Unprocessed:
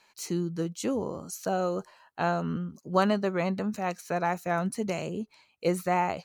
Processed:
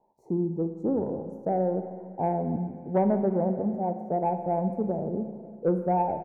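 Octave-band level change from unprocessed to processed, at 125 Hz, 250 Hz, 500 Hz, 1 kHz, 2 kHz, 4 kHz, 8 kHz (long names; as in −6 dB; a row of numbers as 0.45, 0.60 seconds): +2.0 dB, +3.0 dB, +2.5 dB, +1.0 dB, −17.5 dB, below −30 dB, below −35 dB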